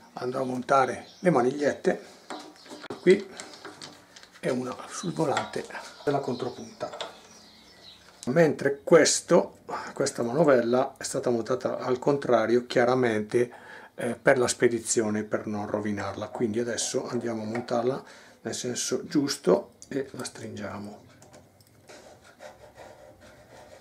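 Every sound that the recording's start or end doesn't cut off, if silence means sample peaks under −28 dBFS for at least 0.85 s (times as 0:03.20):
0:08.23–0:20.76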